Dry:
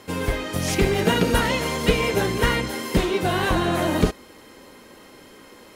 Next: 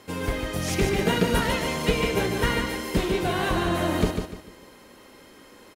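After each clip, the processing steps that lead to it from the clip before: feedback delay 148 ms, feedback 31%, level -6 dB; trim -4 dB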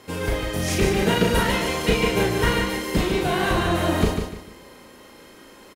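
doubling 36 ms -3 dB; trim +1.5 dB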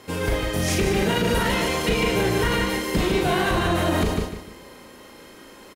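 peak limiter -13.5 dBFS, peak gain reduction 7.5 dB; trim +1.5 dB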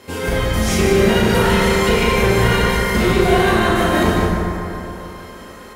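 reverberation RT60 3.3 s, pre-delay 6 ms, DRR -4 dB; trim +1.5 dB

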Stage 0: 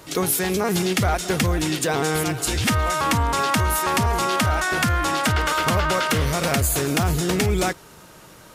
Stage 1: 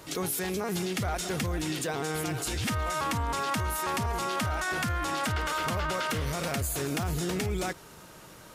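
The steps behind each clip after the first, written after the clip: peak limiter -19.5 dBFS, peak gain reduction 7 dB; trim -3.5 dB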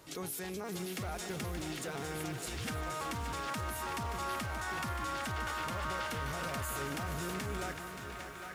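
band-passed feedback delay 806 ms, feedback 64%, band-pass 1.6 kHz, level -4 dB; bit-crushed delay 577 ms, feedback 55%, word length 8-bit, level -8.5 dB; trim -9 dB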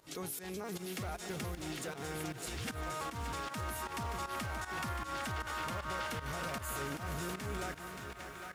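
volume shaper 155 bpm, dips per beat 1, -13 dB, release 137 ms; trim -1 dB

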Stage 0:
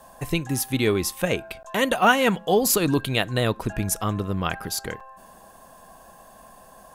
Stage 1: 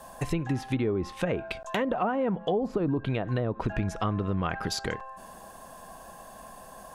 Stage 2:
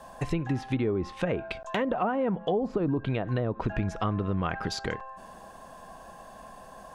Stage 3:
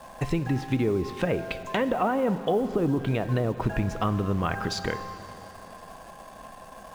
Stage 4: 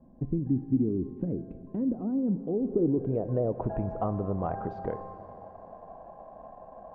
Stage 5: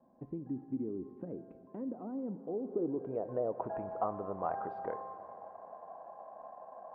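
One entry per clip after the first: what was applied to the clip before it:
low-pass that closes with the level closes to 850 Hz, closed at -17.5 dBFS; in parallel at +3 dB: peak limiter -19.5 dBFS, peak gain reduction 10 dB; on the sum: compression, threshold -18 dBFS, peak gain reduction 7 dB; trim -5.5 dB
peaking EQ 13 kHz -12 dB 1.1 oct
in parallel at -10 dB: bit crusher 7-bit; on the sum: plate-style reverb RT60 3.6 s, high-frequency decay 0.95×, DRR 12 dB
low-pass sweep 270 Hz -> 710 Hz, 2.32–3.73 s; trim -5.5 dB
band-pass filter 1.1 kHz, Q 0.88

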